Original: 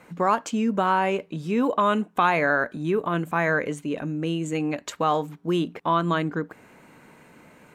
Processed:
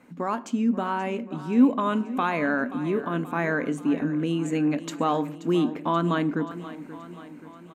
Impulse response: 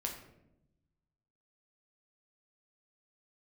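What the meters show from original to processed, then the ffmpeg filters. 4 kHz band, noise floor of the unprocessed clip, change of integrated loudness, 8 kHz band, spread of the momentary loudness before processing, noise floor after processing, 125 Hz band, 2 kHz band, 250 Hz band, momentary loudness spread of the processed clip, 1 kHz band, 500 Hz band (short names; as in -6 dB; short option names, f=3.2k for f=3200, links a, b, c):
-3.5 dB, -54 dBFS, -1.0 dB, -4.0 dB, 8 LU, -45 dBFS, -1.0 dB, -4.5 dB, +3.0 dB, 15 LU, -4.5 dB, -3.0 dB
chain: -filter_complex "[0:a]equalizer=f=260:w=3.3:g=15,dynaudnorm=f=500:g=5:m=5dB,aecho=1:1:530|1060|1590|2120|2650|3180:0.178|0.101|0.0578|0.0329|0.0188|0.0107,asplit=2[a][b];[1:a]atrim=start_sample=2205[c];[b][c]afir=irnorm=-1:irlink=0,volume=-12dB[d];[a][d]amix=inputs=2:normalize=0,volume=-9dB"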